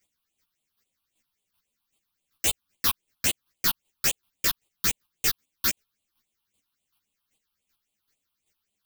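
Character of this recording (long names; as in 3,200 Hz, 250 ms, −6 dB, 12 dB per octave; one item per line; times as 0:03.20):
phaser sweep stages 6, 3.7 Hz, lowest notch 490–1,600 Hz
chopped level 2.6 Hz, depth 60%, duty 15%
a shimmering, thickened sound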